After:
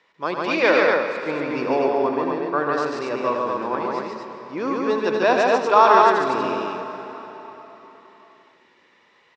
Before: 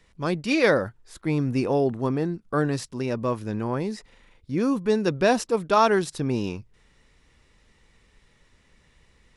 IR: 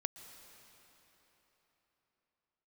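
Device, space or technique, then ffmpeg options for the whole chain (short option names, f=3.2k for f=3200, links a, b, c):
station announcement: -filter_complex "[0:a]highpass=410,lowpass=4k,lowpass=f=7.7k:w=0.5412,lowpass=f=7.7k:w=1.3066,equalizer=f=1k:t=o:w=0.58:g=5,aecho=1:1:81.63|142.9|239.1:0.355|0.794|0.708[a];[1:a]atrim=start_sample=2205[b];[a][b]afir=irnorm=-1:irlink=0,volume=3.5dB"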